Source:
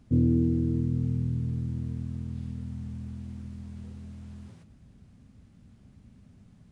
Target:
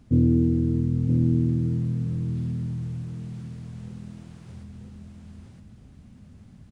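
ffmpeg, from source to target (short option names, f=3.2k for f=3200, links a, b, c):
-af "aecho=1:1:969|1938|2907:0.668|0.16|0.0385,volume=3.5dB"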